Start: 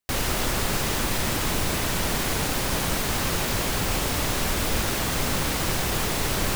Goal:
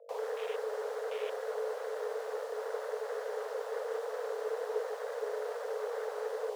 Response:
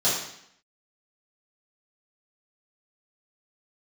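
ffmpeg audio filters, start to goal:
-filter_complex "[0:a]afwtdn=0.0398,highshelf=f=9k:g=-11,acrossover=split=150|2400[a][b][c];[b]alimiter=level_in=4.5dB:limit=-24dB:level=0:latency=1:release=336,volume=-4.5dB[d];[a][d][c]amix=inputs=3:normalize=0,aeval=exprs='val(0)+0.00562*(sin(2*PI*50*n/s)+sin(2*PI*2*50*n/s)/2+sin(2*PI*3*50*n/s)/3+sin(2*PI*4*50*n/s)/4+sin(2*PI*5*50*n/s)/5)':c=same,afreqshift=420,volume=-8.5dB"

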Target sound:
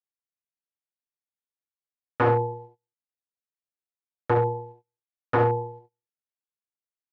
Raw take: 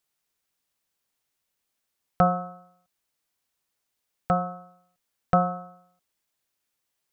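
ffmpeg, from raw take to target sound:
-filter_complex "[0:a]agate=range=-29dB:threshold=-51dB:ratio=16:detection=peak,asplit=2[a][b];[b]alimiter=limit=-17.5dB:level=0:latency=1:release=242,volume=-1dB[c];[a][c]amix=inputs=2:normalize=0,asetrate=29433,aresample=44100,atempo=1.49831,aeval=exprs='0.188*(abs(mod(val(0)/0.188+3,4)-2)-1)':c=same,highpass=120,lowpass=2.2k,asplit=2[d][e];[e]aecho=0:1:49|69:0.126|0.447[f];[d][f]amix=inputs=2:normalize=0,volume=1dB"

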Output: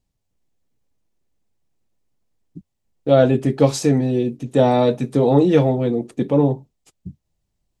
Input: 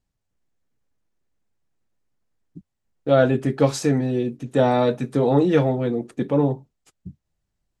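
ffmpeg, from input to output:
-af "equalizer=f=1.5k:t=o:w=0.85:g=-7,volume=3.5dB"

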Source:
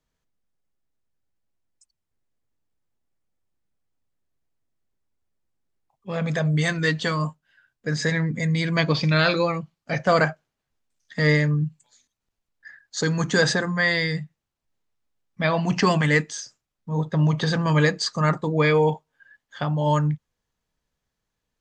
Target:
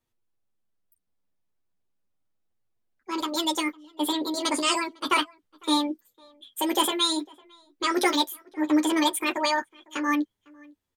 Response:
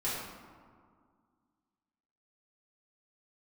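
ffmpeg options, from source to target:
-filter_complex "[0:a]asplit=2[a][b];[b]adelay=991.3,volume=-26dB,highshelf=f=4k:g=-22.3[c];[a][c]amix=inputs=2:normalize=0,flanger=delay=16.5:depth=5.7:speed=0.16,asetrate=86877,aresample=44100"

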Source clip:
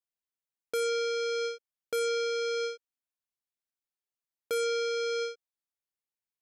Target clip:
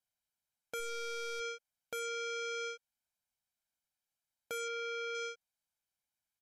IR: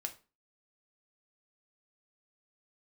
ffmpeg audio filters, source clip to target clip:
-filter_complex "[0:a]asplit=3[a][b][c];[a]afade=t=out:st=0.79:d=0.02[d];[b]aeval=exprs='clip(val(0),-1,0.0188)':c=same,afade=t=in:st=0.79:d=0.02,afade=t=out:st=1.39:d=0.02[e];[c]afade=t=in:st=1.39:d=0.02[f];[d][e][f]amix=inputs=3:normalize=0,aecho=1:1:1.3:0.73,alimiter=level_in=6.5dB:limit=-24dB:level=0:latency=1:release=203,volume=-6.5dB,asettb=1/sr,asplit=3[g][h][i];[g]atrim=end=4.684[j];[h]atrim=start=4.68:end=5.15,asetpts=PTS-STARTPTS,afade=t=in:d=0.004:c=qsin,afade=t=out:st=0.466:d=0.004:c=qsin,lowpass=4.1k[k];[i]atrim=start=5.146[l];[j][k]acrossfade=d=0.004:c1=hsin:c2=qsin[m];[m][l]acrossfade=d=0.004:c1=qsin:c2=hsin,volume=1dB" -ar 32000 -c:a ac3 -b:a 128k

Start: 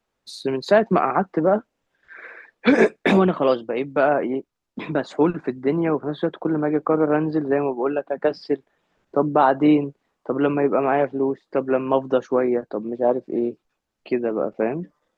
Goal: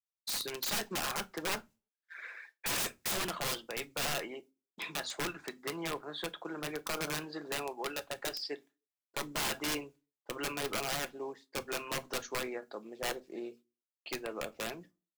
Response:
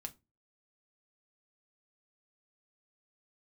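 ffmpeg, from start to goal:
-filter_complex "[0:a]aderivative,agate=range=-33dB:threshold=-57dB:ratio=3:detection=peak,aeval=exprs='(mod(53.1*val(0)+1,2)-1)/53.1':c=same,asplit=2[a][b];[1:a]atrim=start_sample=2205[c];[b][c]afir=irnorm=-1:irlink=0,volume=5.5dB[d];[a][d]amix=inputs=2:normalize=0"

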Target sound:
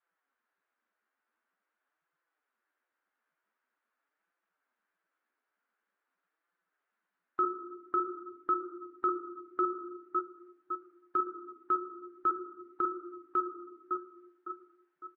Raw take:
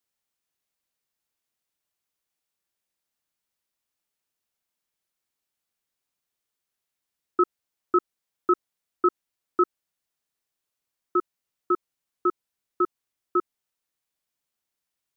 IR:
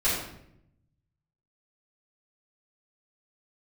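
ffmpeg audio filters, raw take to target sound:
-filter_complex "[0:a]lowpass=f=1.5k:t=q:w=3.2,aecho=1:1:556|1112|1668:0.158|0.0571|0.0205,asplit=2[a][b];[1:a]atrim=start_sample=2205,adelay=17[c];[b][c]afir=irnorm=-1:irlink=0,volume=-23.5dB[d];[a][d]amix=inputs=2:normalize=0,flanger=delay=5.8:depth=8.2:regen=-9:speed=0.46:shape=sinusoidal,bandreject=f=117.7:t=h:w=4,bandreject=f=235.4:t=h:w=4,bandreject=f=353.1:t=h:w=4,acompressor=threshold=-42dB:ratio=1.5,highpass=82,lowshelf=f=160:g=-2,alimiter=level_in=2.5dB:limit=-24dB:level=0:latency=1:release=46,volume=-2.5dB,adynamicequalizer=threshold=0.00224:dfrequency=330:dqfactor=2.2:tfrequency=330:tqfactor=2.2:attack=5:release=100:ratio=0.375:range=2:mode=cutabove:tftype=bell,volume=5.5dB" -ar 22050 -c:a libvorbis -b:a 48k

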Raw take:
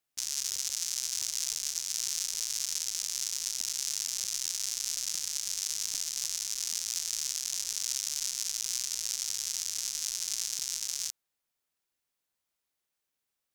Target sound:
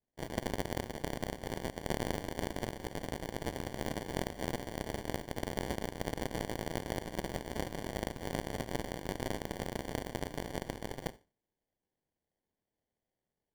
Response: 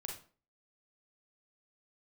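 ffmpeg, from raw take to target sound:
-filter_complex "[0:a]highpass=f=370:w=0.5412,highpass=f=370:w=1.3066,equalizer=f=1.8k:t=q:w=4:g=-9,equalizer=f=2.7k:t=q:w=4:g=-4,equalizer=f=4.5k:t=q:w=4:g=-4,lowpass=f=5.4k:w=0.5412,lowpass=f=5.4k:w=1.3066,asplit=2[a][b];[1:a]atrim=start_sample=2205[c];[b][c]afir=irnorm=-1:irlink=0,volume=-8dB[d];[a][d]amix=inputs=2:normalize=0,acrusher=samples=34:mix=1:aa=0.000001,volume=1dB"

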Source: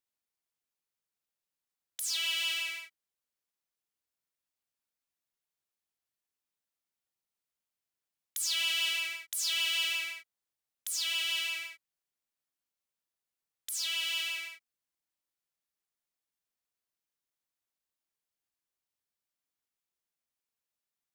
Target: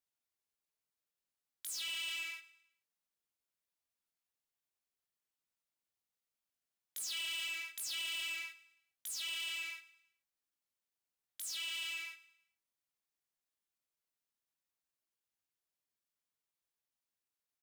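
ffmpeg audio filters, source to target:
-filter_complex "[0:a]asplit=2[a][b];[b]adelay=19,volume=-8.5dB[c];[a][c]amix=inputs=2:normalize=0,atempo=1.2,asoftclip=type=tanh:threshold=-32.5dB,asplit=2[d][e];[e]aecho=0:1:107|214|321|428:0.119|0.0523|0.023|0.0101[f];[d][f]amix=inputs=2:normalize=0,volume=-3.5dB"

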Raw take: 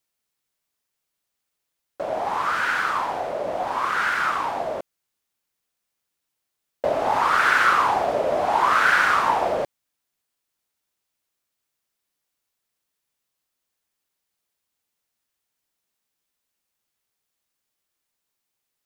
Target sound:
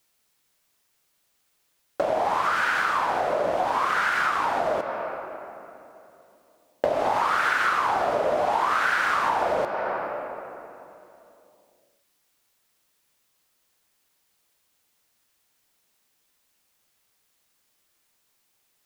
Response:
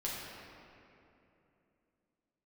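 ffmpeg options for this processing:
-filter_complex "[0:a]asplit=2[a][b];[1:a]atrim=start_sample=2205,lowshelf=f=220:g=-8[c];[b][c]afir=irnorm=-1:irlink=0,volume=-9.5dB[d];[a][d]amix=inputs=2:normalize=0,acompressor=threshold=-30dB:ratio=6,volume=8.5dB"

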